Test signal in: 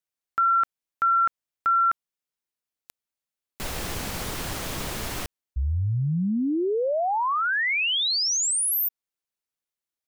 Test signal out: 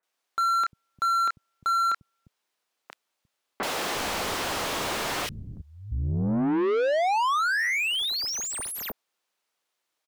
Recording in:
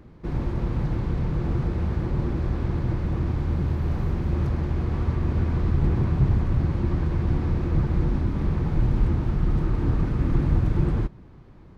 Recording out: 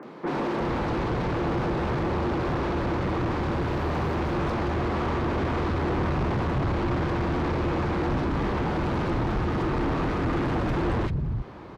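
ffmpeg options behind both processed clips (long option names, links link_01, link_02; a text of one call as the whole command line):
ffmpeg -i in.wav -filter_complex "[0:a]acrossover=split=160|1900[link_01][link_02][link_03];[link_03]adelay=30[link_04];[link_01]adelay=350[link_05];[link_05][link_02][link_04]amix=inputs=3:normalize=0,asplit=2[link_06][link_07];[link_07]highpass=frequency=720:poles=1,volume=32dB,asoftclip=type=tanh:threshold=-10dB[link_08];[link_06][link_08]amix=inputs=2:normalize=0,lowpass=frequency=2400:poles=1,volume=-6dB,volume=-7.5dB" out.wav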